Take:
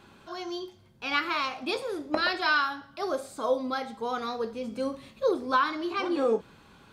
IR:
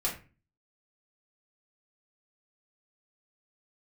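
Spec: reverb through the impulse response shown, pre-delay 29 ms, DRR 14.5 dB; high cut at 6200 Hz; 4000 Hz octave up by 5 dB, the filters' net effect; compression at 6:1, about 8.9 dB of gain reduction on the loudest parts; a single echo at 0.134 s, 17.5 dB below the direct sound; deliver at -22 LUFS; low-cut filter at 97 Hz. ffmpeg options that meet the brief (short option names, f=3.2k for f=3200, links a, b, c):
-filter_complex "[0:a]highpass=97,lowpass=6.2k,equalizer=f=4k:t=o:g=6.5,acompressor=threshold=-29dB:ratio=6,aecho=1:1:134:0.133,asplit=2[a][b];[1:a]atrim=start_sample=2205,adelay=29[c];[b][c]afir=irnorm=-1:irlink=0,volume=-20.5dB[d];[a][d]amix=inputs=2:normalize=0,volume=12dB"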